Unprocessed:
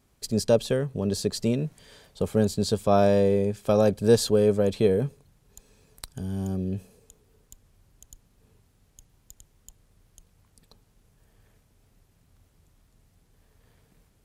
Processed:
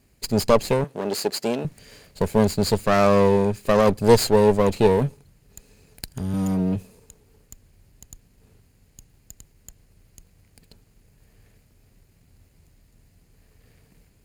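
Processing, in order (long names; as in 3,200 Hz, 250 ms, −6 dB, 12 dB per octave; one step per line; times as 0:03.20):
lower of the sound and its delayed copy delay 0.44 ms
0:00.84–0:01.65: high-pass filter 310 Hz 12 dB per octave
0:06.33–0:06.76: comb filter 6.4 ms, depth 86%
level +5.5 dB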